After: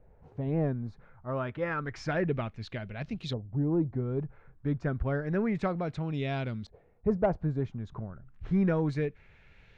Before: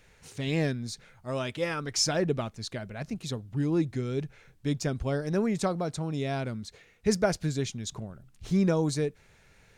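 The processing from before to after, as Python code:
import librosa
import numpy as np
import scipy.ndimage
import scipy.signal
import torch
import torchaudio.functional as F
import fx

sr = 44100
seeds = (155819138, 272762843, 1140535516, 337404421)

y = fx.filter_lfo_lowpass(x, sr, shape='saw_up', hz=0.3, low_hz=670.0, high_hz=3600.0, q=1.8)
y = 10.0 ** (-13.5 / 20.0) * np.tanh(y / 10.0 ** (-13.5 / 20.0))
y = fx.low_shelf(y, sr, hz=110.0, db=8.5)
y = y * librosa.db_to_amplitude(-3.0)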